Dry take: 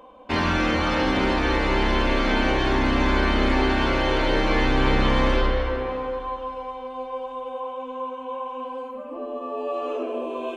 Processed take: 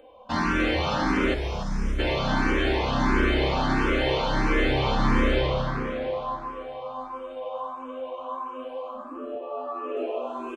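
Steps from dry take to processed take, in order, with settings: 1.34–1.99 spectral gain 220–4700 Hz -19 dB; 9.35–9.97 three-band isolator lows -23 dB, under 210 Hz, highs -14 dB, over 3100 Hz; frequency-shifting echo 0.291 s, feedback 45%, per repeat +100 Hz, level -10 dB; endless phaser +1.5 Hz

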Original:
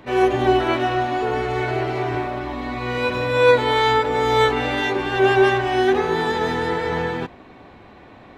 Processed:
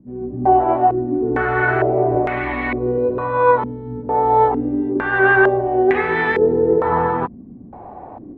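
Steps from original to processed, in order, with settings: AGC gain up to 10 dB; stepped low-pass 2.2 Hz 220–2100 Hz; gain -5.5 dB

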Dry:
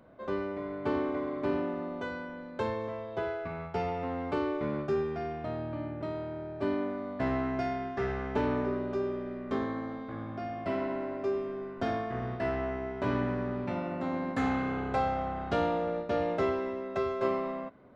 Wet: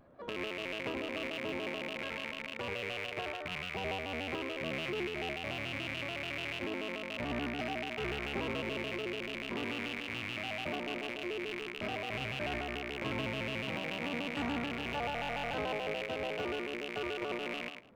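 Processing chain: rattling part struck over -46 dBFS, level -20 dBFS; thinning echo 0.107 s, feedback 16%, level -8 dB; limiter -22 dBFS, peak gain reduction 8.5 dB; stuck buffer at 15.14, samples 1024, times 16; shaped vibrato square 6.9 Hz, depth 160 cents; gain -4.5 dB

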